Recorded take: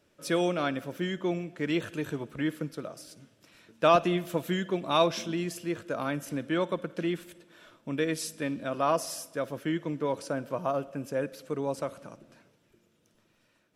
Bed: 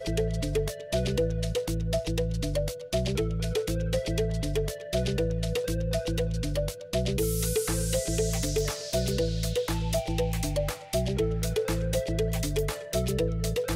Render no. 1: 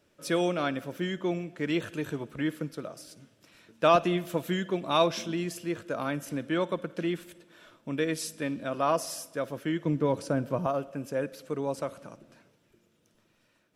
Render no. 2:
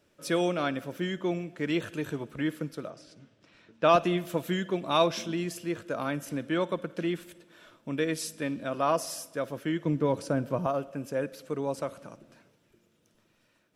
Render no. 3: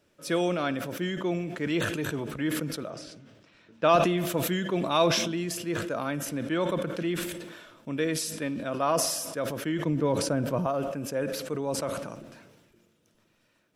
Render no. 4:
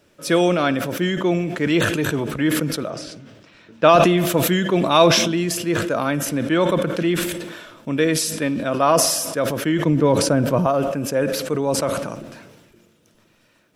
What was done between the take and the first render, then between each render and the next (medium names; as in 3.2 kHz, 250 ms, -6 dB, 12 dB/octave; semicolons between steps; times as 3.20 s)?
9.85–10.67 s: bass shelf 290 Hz +10.5 dB
2.90–3.89 s: distance through air 110 m
decay stretcher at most 41 dB/s
trim +9.5 dB; peak limiter -1 dBFS, peak gain reduction 2.5 dB